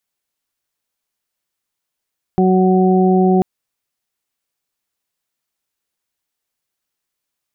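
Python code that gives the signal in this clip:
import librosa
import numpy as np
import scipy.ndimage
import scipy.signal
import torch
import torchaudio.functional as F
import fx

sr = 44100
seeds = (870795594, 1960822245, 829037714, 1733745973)

y = fx.additive_steady(sr, length_s=1.04, hz=186.0, level_db=-12, upper_db=(-2.0, -17.0, -6))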